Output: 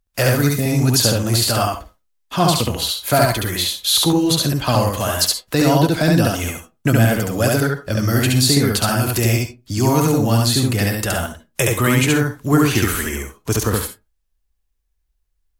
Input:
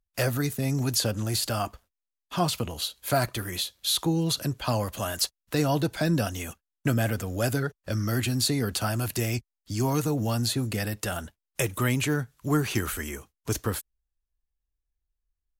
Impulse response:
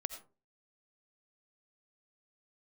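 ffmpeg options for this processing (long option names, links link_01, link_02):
-filter_complex "[0:a]asplit=2[link_01][link_02];[1:a]atrim=start_sample=2205,asetrate=70560,aresample=44100,adelay=70[link_03];[link_02][link_03]afir=irnorm=-1:irlink=0,volume=4.5dB[link_04];[link_01][link_04]amix=inputs=2:normalize=0,volume=8dB"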